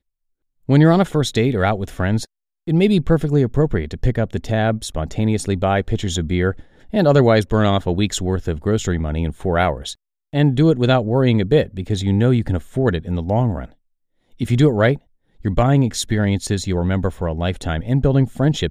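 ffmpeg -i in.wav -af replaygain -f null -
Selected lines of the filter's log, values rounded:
track_gain = -1.2 dB
track_peak = 0.622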